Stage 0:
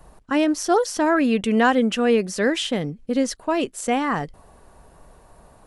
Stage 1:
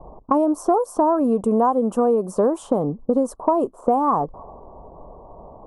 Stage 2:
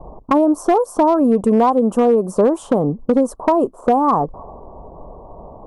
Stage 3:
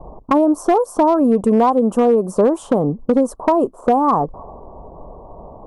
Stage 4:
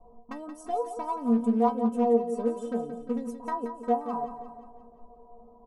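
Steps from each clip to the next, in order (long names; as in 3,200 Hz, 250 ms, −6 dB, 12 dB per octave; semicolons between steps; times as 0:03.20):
low-pass that shuts in the quiet parts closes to 590 Hz, open at −17.5 dBFS; drawn EQ curve 140 Hz 0 dB, 1,100 Hz +12 dB, 1,900 Hz −29 dB, 4,700 Hz −21 dB, 9,500 Hz +1 dB; downward compressor 6 to 1, threshold −21 dBFS, peak gain reduction 15 dB; level +5 dB
low-shelf EQ 460 Hz +3 dB; hard clipping −10.5 dBFS, distortion −22 dB; level +3 dB
no processing that can be heard
stiff-string resonator 230 Hz, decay 0.27 s, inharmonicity 0.008; on a send: repeating echo 176 ms, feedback 53%, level −10 dB; on the sum: highs frequency-modulated by the lows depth 0.16 ms; level −3.5 dB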